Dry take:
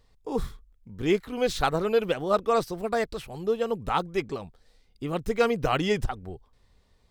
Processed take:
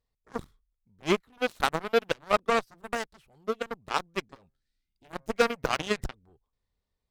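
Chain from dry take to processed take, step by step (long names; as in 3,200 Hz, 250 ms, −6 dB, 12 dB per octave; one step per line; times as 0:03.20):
0:04.34–0:06.05: hum removal 134.7 Hz, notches 16
0:04.46–0:05.10: gain on a spectral selection 380–1,300 Hz −15 dB
harmonic generator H 7 −16 dB, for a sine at −8.5 dBFS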